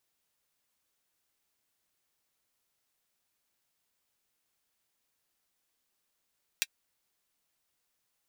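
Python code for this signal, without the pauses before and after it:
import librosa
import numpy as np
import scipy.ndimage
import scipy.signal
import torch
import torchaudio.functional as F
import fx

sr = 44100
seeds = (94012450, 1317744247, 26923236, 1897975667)

y = fx.drum_hat(sr, length_s=0.24, from_hz=2300.0, decay_s=0.05)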